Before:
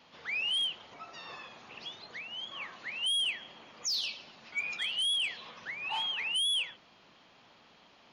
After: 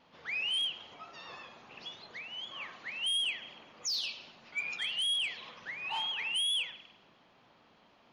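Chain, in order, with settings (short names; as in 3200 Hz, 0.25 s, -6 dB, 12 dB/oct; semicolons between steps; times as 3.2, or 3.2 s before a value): vibrato 6.6 Hz 31 cents; spring tank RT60 1.1 s, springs 37 ms, chirp 40 ms, DRR 12.5 dB; mismatched tape noise reduction decoder only; gain -1.5 dB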